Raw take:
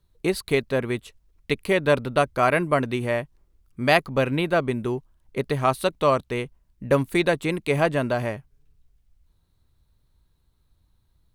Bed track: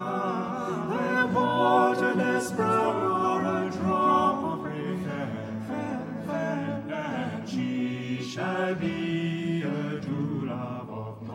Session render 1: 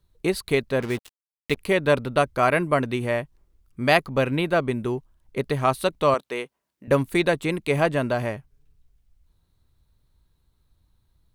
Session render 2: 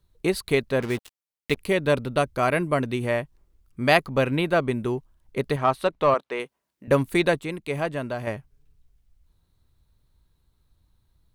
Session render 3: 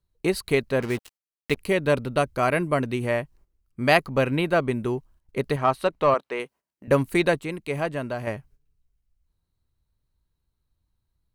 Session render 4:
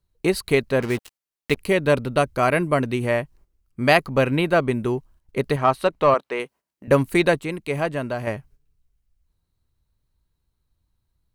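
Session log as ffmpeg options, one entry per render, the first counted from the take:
-filter_complex "[0:a]asettb=1/sr,asplit=3[s0][s1][s2];[s0]atrim=end=0.804[s3];[s1]atrim=start=0.8:end=1.57,asetpts=PTS-STARTPTS,afade=t=in:d=0.004:c=qsin,afade=t=out:st=0.766:d=0.004:c=qsin,acrusher=bits=5:mix=0:aa=0.5[s4];[s2]atrim=start=1.566[s5];[s3][s4]acrossfade=d=0.004:c1=hsin:c2=qsin[s6];[s6][s5]acrossfade=d=0.004:c1=qsin:c2=hsin,asettb=1/sr,asplit=3[s7][s8][s9];[s7]atrim=end=6.144[s10];[s8]atrim=start=6.14:end=6.88,asetpts=PTS-STARTPTS,afade=t=in:d=0.004:c=qsin,afade=t=out:st=0.736:d=0.004:c=qsin,highpass=350[s11];[s9]atrim=start=6.876[s12];[s10][s11]acrossfade=d=0.004:c1=hsin:c2=qsin[s13];[s13][s12]acrossfade=d=0.004:c1=qsin:c2=hsin"
-filter_complex "[0:a]asettb=1/sr,asplit=3[s0][s1][s2];[s0]atrim=end=1.604[s3];[s1]atrim=start=1.6:end=3.04,asetpts=PTS-STARTPTS,afade=t=in:d=0.004:c=qsin,afade=t=out:st=1.436:d=0.004:c=qsin,equalizer=f=1200:w=0.52:g=-3.5[s4];[s2]atrim=start=3.036[s5];[s3][s4]acrossfade=d=0.004:c1=hsin:c2=qsin[s6];[s6][s5]acrossfade=d=0.004:c1=qsin:c2=hsin,asettb=1/sr,asplit=3[s7][s8][s9];[s7]atrim=end=5.564[s10];[s8]atrim=start=5.56:end=6.4,asetpts=PTS-STARTPTS,afade=t=in:d=0.004:c=qsin,afade=t=out:st=0.836:d=0.004:c=qsin,asplit=2[s11][s12];[s12]highpass=f=720:p=1,volume=2.82,asoftclip=type=tanh:threshold=0.422[s13];[s11][s13]amix=inputs=2:normalize=0,lowpass=f=1400:p=1,volume=0.501[s14];[s9]atrim=start=6.396[s15];[s10][s14]acrossfade=d=0.004:c1=hsin:c2=qsin[s16];[s16][s15]acrossfade=d=0.004:c1=qsin:c2=hsin,asplit=3[s17][s18][s19];[s17]atrim=end=7.392[s20];[s18]atrim=start=7.388:end=8.272,asetpts=PTS-STARTPTS,volume=0.501[s21];[s19]atrim=start=8.268[s22];[s20][s21]acrossfade=d=0.004:c1=hsin:c2=hsin[s23];[s23][s22]acrossfade=d=0.004:c1=hsin:c2=hsin"
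-af "bandreject=f=3500:w=15,agate=range=0.316:threshold=0.00251:ratio=16:detection=peak"
-af "volume=1.41,alimiter=limit=0.708:level=0:latency=1"

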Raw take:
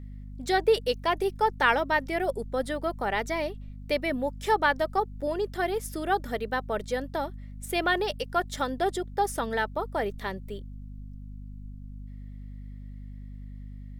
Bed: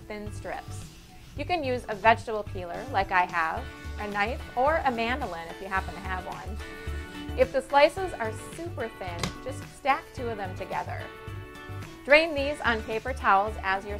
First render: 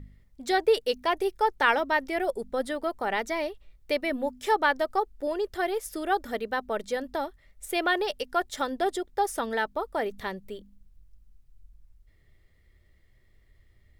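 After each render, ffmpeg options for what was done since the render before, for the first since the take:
-af "bandreject=f=50:t=h:w=4,bandreject=f=100:t=h:w=4,bandreject=f=150:t=h:w=4,bandreject=f=200:t=h:w=4,bandreject=f=250:t=h:w=4"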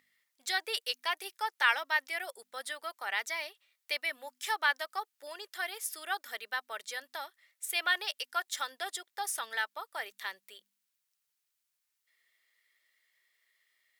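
-af "highpass=1500,highshelf=f=6200:g=4"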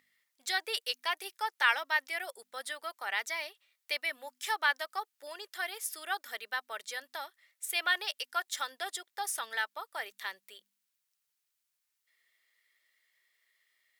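-af anull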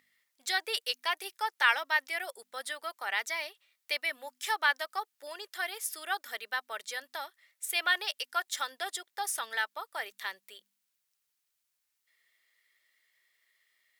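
-af "volume=1.19"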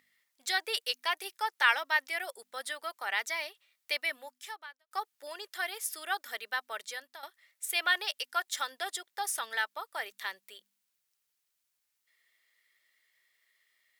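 -filter_complex "[0:a]asplit=3[s0][s1][s2];[s0]atrim=end=4.91,asetpts=PTS-STARTPTS,afade=t=out:st=4.13:d=0.78:c=qua[s3];[s1]atrim=start=4.91:end=7.23,asetpts=PTS-STARTPTS,afade=t=in:d=0.004:c=hsin,afade=t=out:st=1.9:d=0.42:silence=0.237137[s4];[s2]atrim=start=7.23,asetpts=PTS-STARTPTS,afade=t=in:d=0.004:c=hsin:silence=0.237137[s5];[s3][s4][s5]concat=n=3:v=0:a=1"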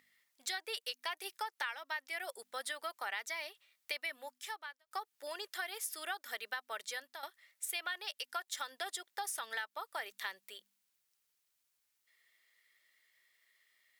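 -af "acompressor=threshold=0.0158:ratio=8"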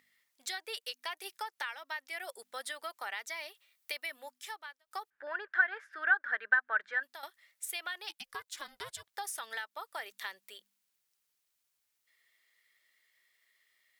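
-filter_complex "[0:a]asettb=1/sr,asplit=3[s0][s1][s2];[s0]atrim=end=3.494[s3];[s1]atrim=start=3.49:end=4.2,asetpts=PTS-STARTPTS,afade=t=in:d=0.004:c=qsin,afade=t=out:st=0.706:d=0.004:c=qsin,highshelf=f=11000:g=6.5[s4];[s2]atrim=start=4.196[s5];[s3][s4]acrossfade=d=0.004:c1=hsin:c2=qsin[s6];[s6][s5]acrossfade=d=0.004:c1=qsin:c2=hsin,asettb=1/sr,asplit=3[s7][s8][s9];[s7]atrim=end=5.104[s10];[s8]atrim=start=5.1:end=7.03,asetpts=PTS-STARTPTS,afade=t=in:d=0.004:c=qsin,afade=t=out:st=1.926:d=0.004:c=qsin,lowpass=f=1600:t=q:w=11[s11];[s9]atrim=start=7.026[s12];[s10][s11]acrossfade=d=0.004:c1=hsin:c2=qsin[s13];[s13][s12]acrossfade=d=0.004:c1=qsin:c2=hsin,asettb=1/sr,asplit=3[s14][s15][s16];[s14]atrim=end=8.094[s17];[s15]atrim=start=8.09:end=9.14,asetpts=PTS-STARTPTS,afade=t=in:d=0.004:c=qsin,afade=t=out:st=1.046:d=0.004:c=qsin,aeval=exprs='val(0)*sin(2*PI*270*n/s)':c=same[s18];[s16]atrim=start=9.136[s19];[s17][s18]acrossfade=d=0.004:c1=hsin:c2=qsin[s20];[s20][s19]acrossfade=d=0.004:c1=qsin:c2=hsin"

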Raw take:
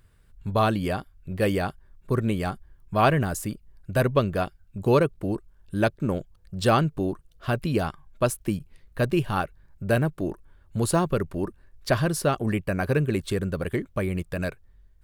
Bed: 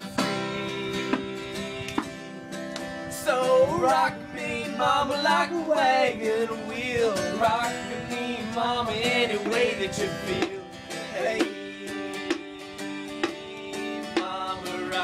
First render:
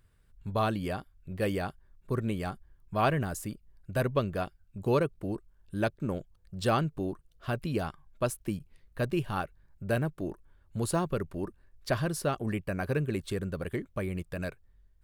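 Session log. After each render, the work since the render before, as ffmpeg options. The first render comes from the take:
-af "volume=0.473"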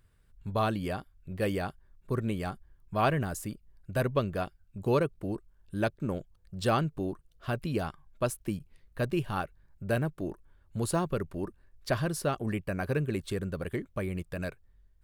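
-af anull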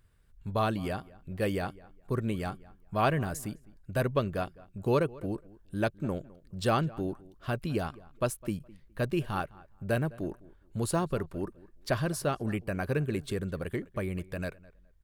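-filter_complex "[0:a]asplit=2[s0][s1];[s1]adelay=208,lowpass=f=2400:p=1,volume=0.0891,asplit=2[s2][s3];[s3]adelay=208,lowpass=f=2400:p=1,volume=0.22[s4];[s0][s2][s4]amix=inputs=3:normalize=0"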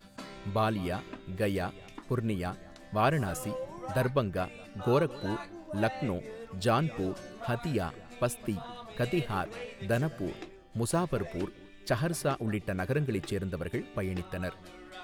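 -filter_complex "[1:a]volume=0.119[s0];[0:a][s0]amix=inputs=2:normalize=0"

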